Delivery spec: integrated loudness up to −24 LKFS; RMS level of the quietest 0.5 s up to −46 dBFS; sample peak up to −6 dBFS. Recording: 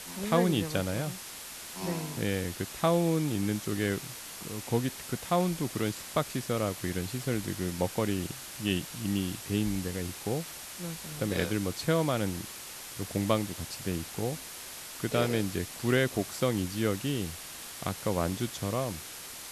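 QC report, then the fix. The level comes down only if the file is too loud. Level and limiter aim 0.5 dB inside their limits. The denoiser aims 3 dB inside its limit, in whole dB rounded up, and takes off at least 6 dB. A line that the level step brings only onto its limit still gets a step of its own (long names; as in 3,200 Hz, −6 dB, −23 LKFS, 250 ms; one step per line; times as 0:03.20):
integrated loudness −32.0 LKFS: in spec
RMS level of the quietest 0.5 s −43 dBFS: out of spec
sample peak −11.0 dBFS: in spec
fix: broadband denoise 6 dB, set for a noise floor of −43 dBFS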